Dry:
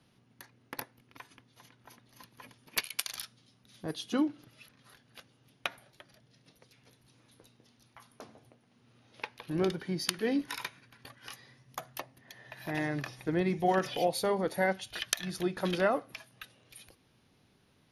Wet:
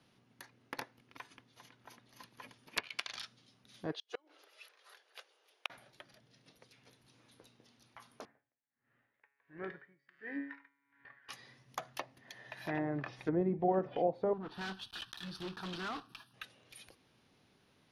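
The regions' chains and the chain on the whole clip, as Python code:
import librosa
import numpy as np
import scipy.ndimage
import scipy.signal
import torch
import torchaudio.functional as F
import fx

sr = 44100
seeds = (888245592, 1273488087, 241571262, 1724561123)

y = fx.chain(x, sr, fx.steep_highpass(hz=390.0, slope=48),
    fx.gate_flip(shuts_db=-27.0, range_db=-35), at=(3.92, 5.7))
y = fx.chain(y, sr, fx.lowpass_res(hz=1800.0, q=5.9),
    fx.comb_fb(f0_hz=140.0, decay_s=1.1, harmonics='all', damping=0.0, mix_pct=80),
    fx.tremolo_db(hz=1.4, depth_db=26), at=(8.25, 11.29))
y = fx.chain(y, sr, fx.block_float(bits=3),
    fx.fixed_phaser(hz=2100.0, stages=6),
    fx.tube_stage(drive_db=36.0, bias=0.25), at=(14.33, 16.34))
y = fx.high_shelf(y, sr, hz=12000.0, db=-10.0)
y = fx.env_lowpass_down(y, sr, base_hz=660.0, full_db=-27.5)
y = fx.low_shelf(y, sr, hz=180.0, db=-7.0)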